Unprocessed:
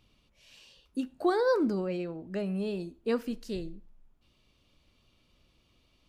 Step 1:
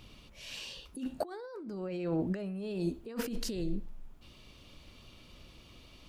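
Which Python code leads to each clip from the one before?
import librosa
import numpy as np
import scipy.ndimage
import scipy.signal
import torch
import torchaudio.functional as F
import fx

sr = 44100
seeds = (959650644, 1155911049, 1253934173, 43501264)

y = fx.over_compress(x, sr, threshold_db=-41.0, ratio=-1.0)
y = y * librosa.db_to_amplitude(4.0)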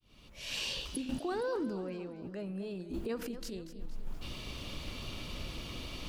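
y = fx.fade_in_head(x, sr, length_s=1.21)
y = fx.over_compress(y, sr, threshold_db=-45.0, ratio=-1.0)
y = fx.echo_warbled(y, sr, ms=232, feedback_pct=51, rate_hz=2.8, cents=118, wet_db=-13.0)
y = y * librosa.db_to_amplitude(6.0)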